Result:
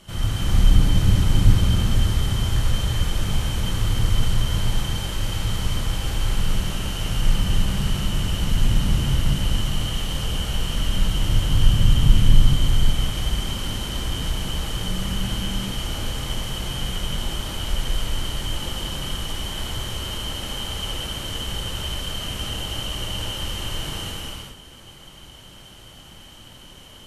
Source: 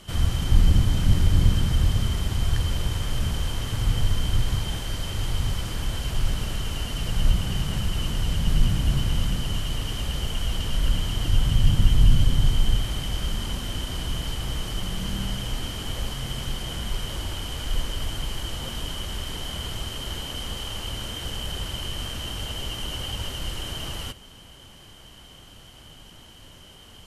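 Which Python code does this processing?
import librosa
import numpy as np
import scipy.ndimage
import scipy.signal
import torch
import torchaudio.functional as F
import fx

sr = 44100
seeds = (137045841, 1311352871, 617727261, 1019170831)

y = fx.notch(x, sr, hz=4900.0, q=22.0)
y = fx.rev_gated(y, sr, seeds[0], gate_ms=440, shape='flat', drr_db=-5.5)
y = F.gain(torch.from_numpy(y), -3.0).numpy()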